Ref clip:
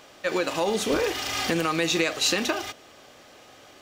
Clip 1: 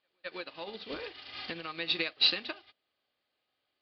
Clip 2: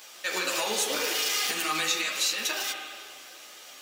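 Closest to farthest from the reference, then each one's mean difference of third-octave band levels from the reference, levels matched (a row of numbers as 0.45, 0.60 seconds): 2, 1; 8.0, 13.5 decibels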